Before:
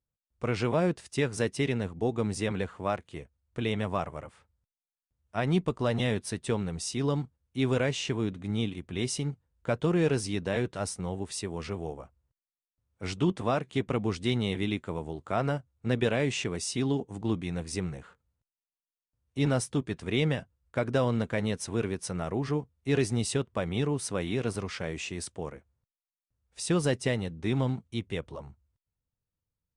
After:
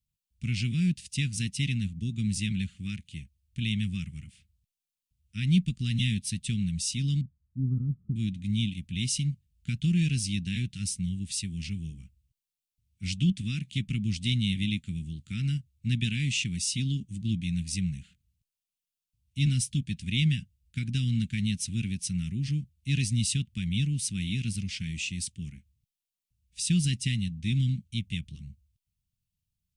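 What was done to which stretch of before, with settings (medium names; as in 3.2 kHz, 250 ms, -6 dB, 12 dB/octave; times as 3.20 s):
7.21–8.16 s: Chebyshev low-pass 1.3 kHz, order 10
whole clip: elliptic band-stop 200–2600 Hz, stop band 80 dB; trim +5 dB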